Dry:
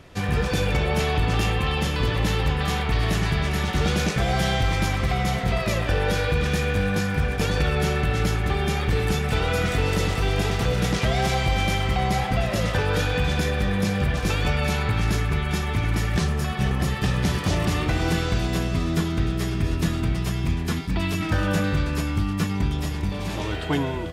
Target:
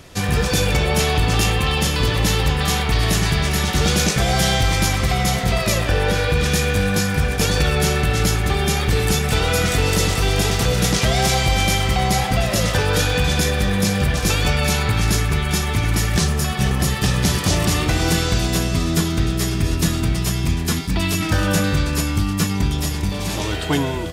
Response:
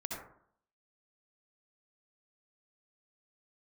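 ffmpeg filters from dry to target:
-filter_complex "[0:a]asettb=1/sr,asplit=3[link_01][link_02][link_03];[link_01]atrim=end=5.844[link_04];[link_02]atrim=start=5.84:end=6.39,asetpts=PTS-STARTPTS,afade=type=in:duration=0.004:curve=qsin,afade=type=out:start_time=0.546:duration=0.004:curve=qsin,acrossover=split=3500[link_05][link_06];[link_06]acompressor=threshold=-42dB:ratio=4:attack=1:release=60[link_07];[link_05][link_07]amix=inputs=2:normalize=0[link_08];[link_03]atrim=start=6.386[link_09];[link_04][link_08]acrossfade=duration=0.004:curve1=hsin:curve2=qsin[link_10];[link_10][link_09]acrossfade=duration=0.004:curve1=qsin:curve2=hsin,bass=frequency=250:gain=0,treble=frequency=4000:gain=10,volume=4dB"

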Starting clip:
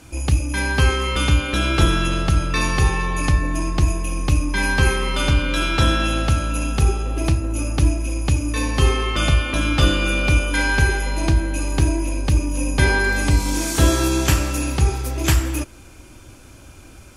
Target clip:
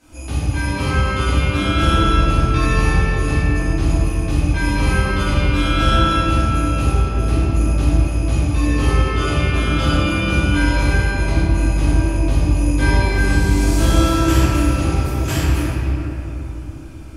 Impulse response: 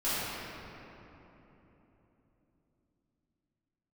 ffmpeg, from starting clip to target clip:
-filter_complex "[1:a]atrim=start_sample=2205[link_01];[0:a][link_01]afir=irnorm=-1:irlink=0,volume=-9.5dB"

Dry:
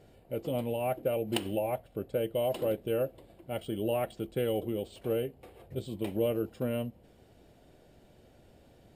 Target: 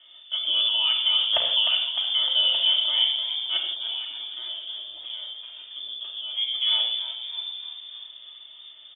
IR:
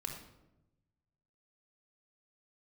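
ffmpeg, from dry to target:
-filter_complex "[0:a]asplit=3[link_01][link_02][link_03];[link_01]afade=type=out:start_time=3.6:duration=0.02[link_04];[link_02]acompressor=threshold=-47dB:ratio=2.5,afade=type=in:start_time=3.6:duration=0.02,afade=type=out:start_time=6.36:duration=0.02[link_05];[link_03]afade=type=in:start_time=6.36:duration=0.02[link_06];[link_04][link_05][link_06]amix=inputs=3:normalize=0,asplit=8[link_07][link_08][link_09][link_10][link_11][link_12][link_13][link_14];[link_08]adelay=304,afreqshift=-72,volume=-9dB[link_15];[link_09]adelay=608,afreqshift=-144,volume=-13.6dB[link_16];[link_10]adelay=912,afreqshift=-216,volume=-18.2dB[link_17];[link_11]adelay=1216,afreqshift=-288,volume=-22.7dB[link_18];[link_12]adelay=1520,afreqshift=-360,volume=-27.3dB[link_19];[link_13]adelay=1824,afreqshift=-432,volume=-31.9dB[link_20];[link_14]adelay=2128,afreqshift=-504,volume=-36.5dB[link_21];[link_07][link_15][link_16][link_17][link_18][link_19][link_20][link_21]amix=inputs=8:normalize=0[link_22];[1:a]atrim=start_sample=2205,afade=type=out:start_time=0.17:duration=0.01,atrim=end_sample=7938,asetrate=30429,aresample=44100[link_23];[link_22][link_23]afir=irnorm=-1:irlink=0,lowpass=frequency=3100:width_type=q:width=0.5098,lowpass=frequency=3100:width_type=q:width=0.6013,lowpass=frequency=3100:width_type=q:width=0.9,lowpass=frequency=3100:width_type=q:width=2.563,afreqshift=-3600,volume=6dB"

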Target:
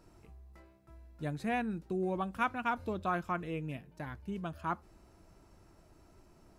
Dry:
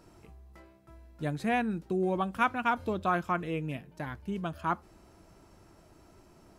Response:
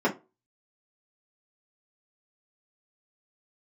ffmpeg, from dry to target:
-af "lowshelf=frequency=61:gain=8,bandreject=frequency=3200:width=27,volume=-5dB"

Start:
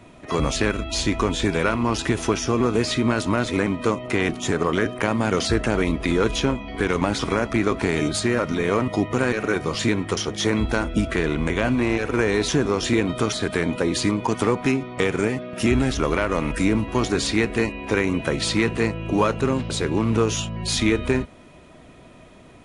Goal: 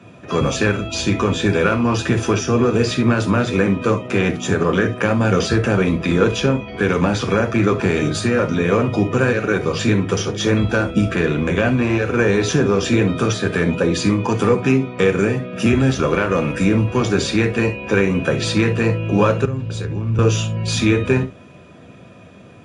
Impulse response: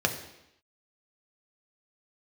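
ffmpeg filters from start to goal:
-filter_complex "[1:a]atrim=start_sample=2205,atrim=end_sample=3528[link_01];[0:a][link_01]afir=irnorm=-1:irlink=0,asettb=1/sr,asplit=3[link_02][link_03][link_04];[link_02]atrim=end=19.454[link_05];[link_03]atrim=start=19.45:end=20.19,asetpts=PTS-STARTPTS,afade=type=in:duration=0.004:curve=qsin,afade=type=out:start_time=0.736:duration=0.004:curve=qsin,acrossover=split=120[link_06][link_07];[link_07]acompressor=threshold=-21dB:ratio=6[link_08];[link_06][link_08]amix=inputs=2:normalize=0[link_09];[link_04]atrim=start=20.186[link_10];[link_05][link_09]acrossfade=duration=0.004:curve1=hsin:curve2=qsin[link_11];[link_11][link_10]acrossfade=duration=0.004:curve1=qsin:curve2=hsin,volume=-7dB"

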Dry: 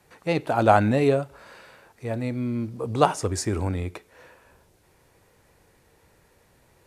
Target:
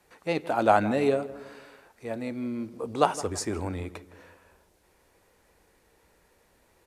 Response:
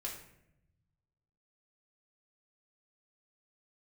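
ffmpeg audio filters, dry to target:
-filter_complex "[0:a]equalizer=frequency=120:width_type=o:width=0.68:gain=-12.5,asplit=2[link_01][link_02];[link_02]adelay=163,lowpass=frequency=1600:poles=1,volume=-15.5dB,asplit=2[link_03][link_04];[link_04]adelay=163,lowpass=frequency=1600:poles=1,volume=0.49,asplit=2[link_05][link_06];[link_06]adelay=163,lowpass=frequency=1600:poles=1,volume=0.49,asplit=2[link_07][link_08];[link_08]adelay=163,lowpass=frequency=1600:poles=1,volume=0.49[link_09];[link_01][link_03][link_05][link_07][link_09]amix=inputs=5:normalize=0,volume=-3dB"

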